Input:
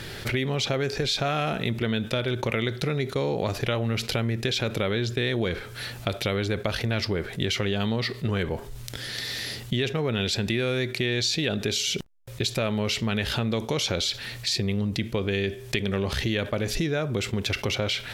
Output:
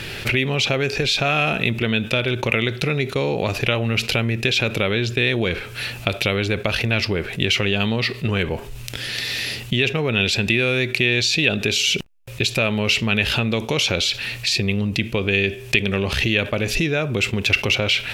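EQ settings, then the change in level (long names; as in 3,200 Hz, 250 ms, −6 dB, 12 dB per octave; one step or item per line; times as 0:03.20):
parametric band 2,600 Hz +11.5 dB 0.36 octaves
+4.5 dB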